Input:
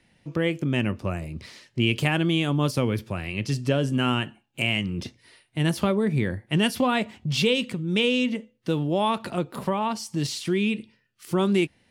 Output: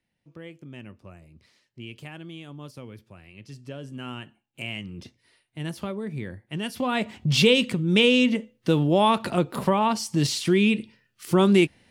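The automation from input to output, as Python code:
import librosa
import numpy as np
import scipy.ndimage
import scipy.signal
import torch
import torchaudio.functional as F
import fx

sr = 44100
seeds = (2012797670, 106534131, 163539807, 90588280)

y = fx.gain(x, sr, db=fx.line((3.34, -17.5), (4.66, -9.0), (6.63, -9.0), (7.2, 4.0)))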